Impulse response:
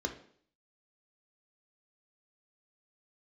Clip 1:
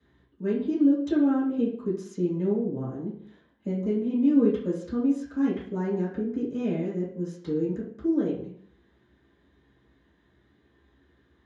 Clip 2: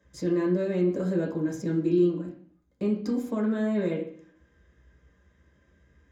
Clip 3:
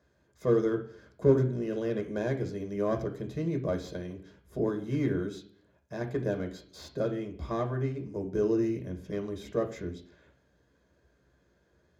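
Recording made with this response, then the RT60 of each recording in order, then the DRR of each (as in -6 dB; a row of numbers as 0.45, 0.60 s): 3; 0.55, 0.55, 0.55 s; -10.5, -2.5, 4.5 dB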